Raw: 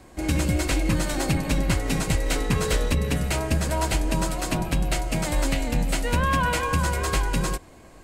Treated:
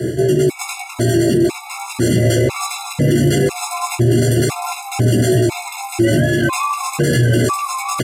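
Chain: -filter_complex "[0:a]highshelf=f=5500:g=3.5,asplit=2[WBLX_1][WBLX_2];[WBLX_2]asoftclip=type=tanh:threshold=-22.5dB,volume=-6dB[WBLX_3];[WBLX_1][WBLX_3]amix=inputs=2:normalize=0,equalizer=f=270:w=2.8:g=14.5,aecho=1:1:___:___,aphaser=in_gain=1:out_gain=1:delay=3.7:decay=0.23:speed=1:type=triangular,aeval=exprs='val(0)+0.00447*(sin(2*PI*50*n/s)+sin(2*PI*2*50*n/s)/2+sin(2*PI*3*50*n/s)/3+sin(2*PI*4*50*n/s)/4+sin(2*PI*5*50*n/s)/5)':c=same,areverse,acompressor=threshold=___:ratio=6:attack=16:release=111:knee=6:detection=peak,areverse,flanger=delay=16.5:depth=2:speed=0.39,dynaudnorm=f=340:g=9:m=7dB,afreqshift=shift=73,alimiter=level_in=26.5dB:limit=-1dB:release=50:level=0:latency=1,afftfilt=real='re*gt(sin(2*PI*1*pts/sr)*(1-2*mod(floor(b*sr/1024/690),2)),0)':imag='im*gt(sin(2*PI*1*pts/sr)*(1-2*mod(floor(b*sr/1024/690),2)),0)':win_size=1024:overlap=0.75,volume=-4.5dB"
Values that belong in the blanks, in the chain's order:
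851, 0.422, -31dB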